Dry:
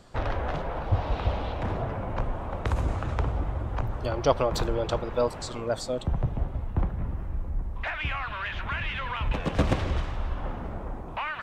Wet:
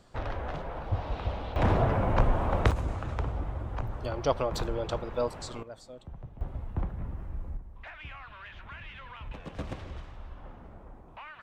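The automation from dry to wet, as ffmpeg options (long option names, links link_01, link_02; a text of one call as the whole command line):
ffmpeg -i in.wav -af "asetnsamples=nb_out_samples=441:pad=0,asendcmd='1.56 volume volume 5.5dB;2.71 volume volume -4.5dB;5.63 volume volume -17dB;6.41 volume volume -5.5dB;7.57 volume volume -13.5dB',volume=-5.5dB" out.wav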